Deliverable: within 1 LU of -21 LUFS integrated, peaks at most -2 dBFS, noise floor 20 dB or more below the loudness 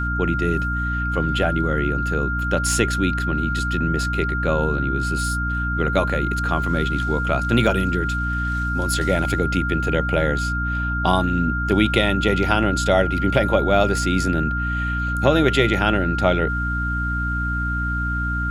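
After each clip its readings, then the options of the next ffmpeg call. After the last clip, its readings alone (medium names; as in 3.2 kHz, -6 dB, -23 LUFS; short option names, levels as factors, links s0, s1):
hum 60 Hz; highest harmonic 300 Hz; hum level -22 dBFS; steady tone 1.4 kHz; tone level -24 dBFS; loudness -21.0 LUFS; peak level -1.5 dBFS; loudness target -21.0 LUFS
-> -af "bandreject=f=60:t=h:w=4,bandreject=f=120:t=h:w=4,bandreject=f=180:t=h:w=4,bandreject=f=240:t=h:w=4,bandreject=f=300:t=h:w=4"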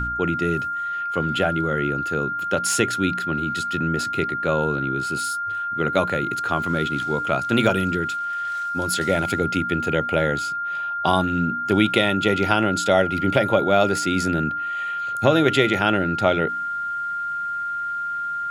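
hum not found; steady tone 1.4 kHz; tone level -24 dBFS
-> -af "bandreject=f=1400:w=30"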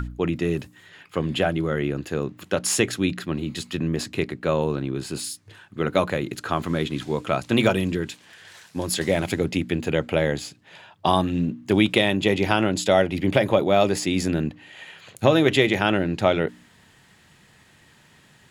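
steady tone not found; loudness -23.5 LUFS; peak level -2.5 dBFS; loudness target -21.0 LUFS
-> -af "volume=1.33,alimiter=limit=0.794:level=0:latency=1"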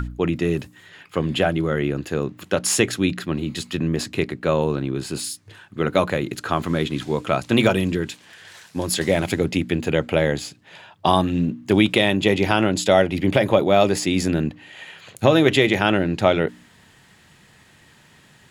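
loudness -21.0 LUFS; peak level -2.0 dBFS; noise floor -53 dBFS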